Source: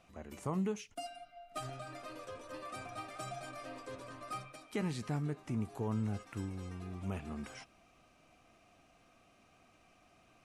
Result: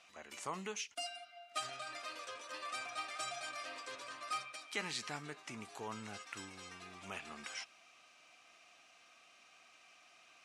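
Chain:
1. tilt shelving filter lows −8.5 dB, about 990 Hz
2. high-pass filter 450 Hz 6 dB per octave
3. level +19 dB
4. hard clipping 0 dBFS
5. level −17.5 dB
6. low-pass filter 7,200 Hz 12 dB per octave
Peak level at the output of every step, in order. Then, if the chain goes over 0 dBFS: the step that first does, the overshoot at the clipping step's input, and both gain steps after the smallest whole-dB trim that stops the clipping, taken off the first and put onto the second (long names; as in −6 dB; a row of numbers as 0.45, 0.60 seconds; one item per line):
−24.5, −24.5, −5.5, −5.5, −23.0, −23.5 dBFS
no step passes full scale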